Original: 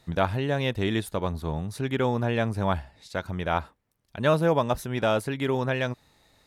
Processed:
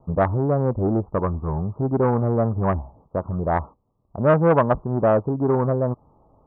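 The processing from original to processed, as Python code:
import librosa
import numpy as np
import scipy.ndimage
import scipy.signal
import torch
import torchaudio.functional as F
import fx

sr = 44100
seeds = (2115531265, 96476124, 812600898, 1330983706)

y = scipy.signal.sosfilt(scipy.signal.butter(16, 1200.0, 'lowpass', fs=sr, output='sos'), x)
y = fx.transformer_sat(y, sr, knee_hz=620.0)
y = F.gain(torch.from_numpy(y), 8.0).numpy()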